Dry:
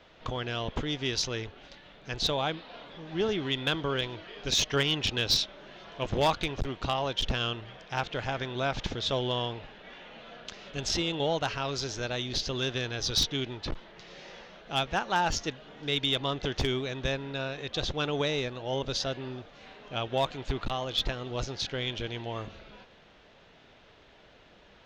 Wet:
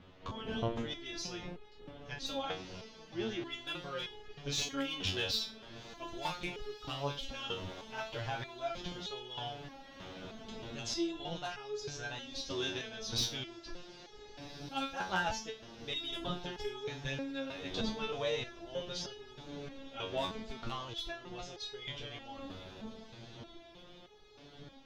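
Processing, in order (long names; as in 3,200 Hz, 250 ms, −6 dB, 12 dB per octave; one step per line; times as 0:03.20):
wind on the microphone 320 Hz −41 dBFS
feedback delay with all-pass diffusion 1,616 ms, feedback 62%, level −15.5 dB
step-sequenced resonator 3.2 Hz 93–420 Hz
level +3.5 dB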